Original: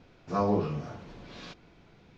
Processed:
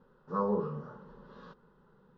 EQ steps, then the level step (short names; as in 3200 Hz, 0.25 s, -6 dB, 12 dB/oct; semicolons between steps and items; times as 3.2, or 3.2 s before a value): LPF 1800 Hz 12 dB/oct; low shelf 220 Hz -6 dB; fixed phaser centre 460 Hz, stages 8; 0.0 dB